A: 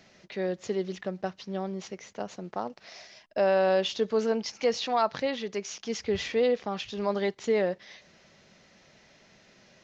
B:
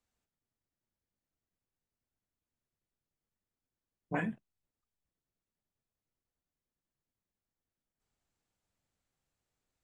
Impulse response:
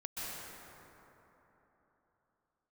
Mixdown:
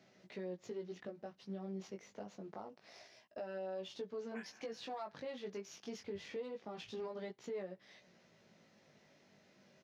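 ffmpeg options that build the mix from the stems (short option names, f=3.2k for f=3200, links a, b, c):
-filter_complex "[0:a]aeval=exprs='if(lt(val(0),0),0.708*val(0),val(0))':c=same,tiltshelf=f=890:g=3.5,alimiter=level_in=2dB:limit=-24dB:level=0:latency=1:release=371,volume=-2dB,volume=-4.5dB,asplit=2[a][b];[1:a]highpass=1.4k,adelay=200,volume=-1dB,asplit=2[c][d];[d]volume=-18dB[e];[b]apad=whole_len=442645[f];[c][f]sidechaincompress=threshold=-40dB:ratio=8:attack=16:release=1210[g];[2:a]atrim=start_sample=2205[h];[e][h]afir=irnorm=-1:irlink=0[i];[a][g][i]amix=inputs=3:normalize=0,highpass=120,flanger=delay=16:depth=4.6:speed=0.26,alimiter=level_in=11.5dB:limit=-24dB:level=0:latency=1:release=206,volume=-11.5dB"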